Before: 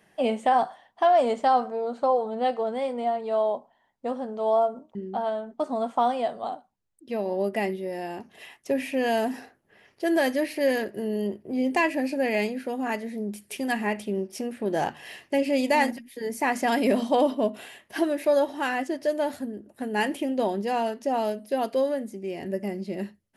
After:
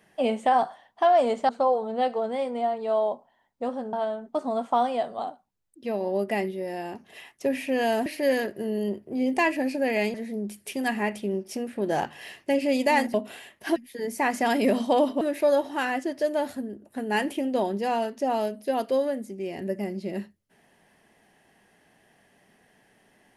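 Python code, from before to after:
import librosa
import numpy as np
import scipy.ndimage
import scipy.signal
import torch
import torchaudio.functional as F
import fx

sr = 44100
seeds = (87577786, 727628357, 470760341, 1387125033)

y = fx.edit(x, sr, fx.cut(start_s=1.49, length_s=0.43),
    fx.cut(start_s=4.36, length_s=0.82),
    fx.cut(start_s=9.31, length_s=1.13),
    fx.cut(start_s=12.52, length_s=0.46),
    fx.move(start_s=17.43, length_s=0.62, to_s=15.98), tone=tone)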